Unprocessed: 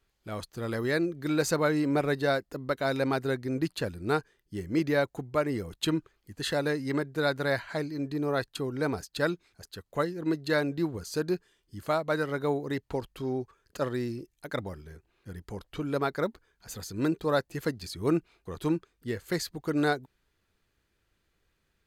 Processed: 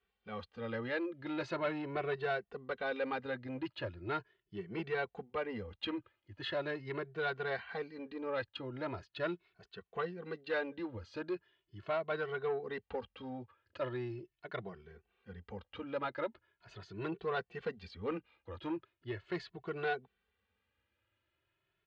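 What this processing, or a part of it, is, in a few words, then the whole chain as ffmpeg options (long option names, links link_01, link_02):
barber-pole flanger into a guitar amplifier: -filter_complex "[0:a]asplit=2[link_01][link_02];[link_02]adelay=2.2,afreqshift=0.4[link_03];[link_01][link_03]amix=inputs=2:normalize=1,asoftclip=type=tanh:threshold=-25dB,highpass=81,equalizer=frequency=150:width_type=q:width=4:gain=-9,equalizer=frequency=280:width_type=q:width=4:gain=-9,equalizer=frequency=2900:width_type=q:width=4:gain=4,lowpass=frequency=3500:width=0.5412,lowpass=frequency=3500:width=1.3066,volume=-2dB"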